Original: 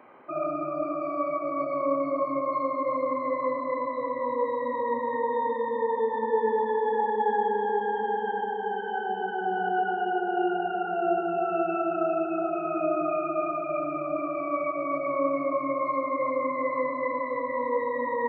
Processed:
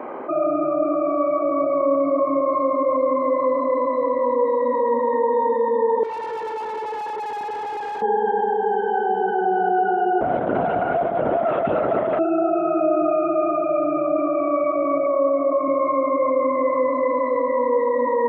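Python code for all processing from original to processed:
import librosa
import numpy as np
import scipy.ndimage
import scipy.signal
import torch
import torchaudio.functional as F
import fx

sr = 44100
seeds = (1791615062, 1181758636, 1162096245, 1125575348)

y = fx.chain(x, sr, fx.highpass(hz=810.0, slope=12),
    fx.tube_stage(drive_db=42.0, bias=0.7), at=(6.03, 8.02))
y = fx.chain(y, sr, fx.self_delay(depth_ms=0.17),
    fx.over_compress(threshold_db=-28.0, ratio=-0.5),
    fx.lpc_vocoder(seeds[0], excitation='whisper', order=10), at=(10.21, 12.19))
y = fx.chain(y, sr, fx.highpass(hz=630.0, slope=12),
    fx.tilt_eq(slope=-5.5), at=(15.06, 15.68))
y = scipy.signal.sosfilt(scipy.signal.butter(2, 300.0, 'highpass', fs=sr, output='sos'), y)
y = fx.tilt_shelf(y, sr, db=10.0, hz=1400.0)
y = fx.env_flatten(y, sr, amount_pct=50)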